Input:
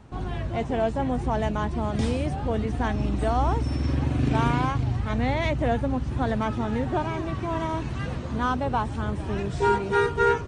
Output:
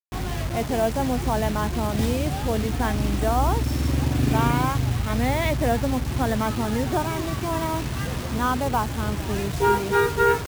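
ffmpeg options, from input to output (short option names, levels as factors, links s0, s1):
-af "acrusher=bits=5:mix=0:aa=0.000001,volume=1.26"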